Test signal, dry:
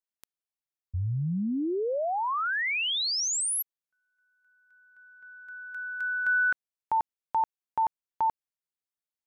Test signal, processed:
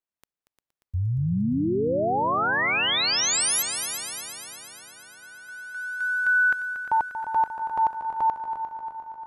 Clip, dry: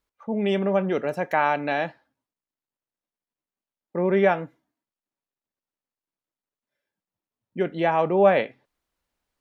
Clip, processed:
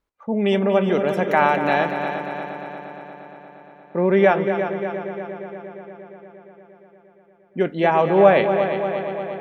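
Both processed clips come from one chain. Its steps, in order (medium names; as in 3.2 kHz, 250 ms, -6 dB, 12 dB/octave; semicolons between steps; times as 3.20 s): multi-head delay 117 ms, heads second and third, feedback 68%, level -10 dB; tape noise reduction on one side only decoder only; trim +4 dB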